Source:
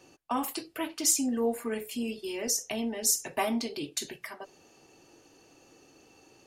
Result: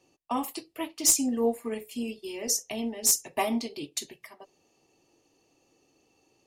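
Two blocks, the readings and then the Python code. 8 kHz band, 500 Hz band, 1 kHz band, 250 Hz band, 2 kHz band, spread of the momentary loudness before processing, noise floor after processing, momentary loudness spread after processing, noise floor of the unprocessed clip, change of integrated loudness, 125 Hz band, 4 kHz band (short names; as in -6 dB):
+3.0 dB, +1.0 dB, +1.0 dB, +1.0 dB, -1.5 dB, 14 LU, -69 dBFS, 14 LU, -60 dBFS, +2.0 dB, 0.0 dB, +1.5 dB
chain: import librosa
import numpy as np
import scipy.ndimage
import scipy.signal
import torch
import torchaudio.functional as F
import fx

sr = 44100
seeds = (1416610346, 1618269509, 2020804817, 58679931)

y = np.minimum(x, 2.0 * 10.0 ** (-17.0 / 20.0) - x)
y = fx.peak_eq(y, sr, hz=1500.0, db=-12.0, octaves=0.28)
y = fx.upward_expand(y, sr, threshold_db=-49.0, expansion=1.5)
y = y * librosa.db_to_amplitude(4.5)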